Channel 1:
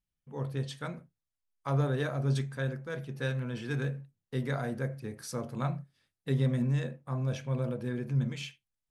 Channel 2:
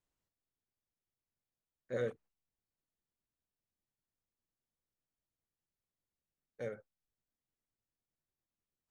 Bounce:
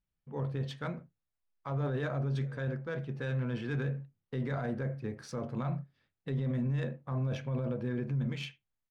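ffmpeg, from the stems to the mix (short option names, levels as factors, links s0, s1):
-filter_complex "[0:a]alimiter=level_in=1.58:limit=0.0631:level=0:latency=1:release=11,volume=0.631,volume=1.26[s0];[1:a]adelay=500,volume=0.1[s1];[s0][s1]amix=inputs=2:normalize=0,adynamicsmooth=sensitivity=4:basefreq=3300"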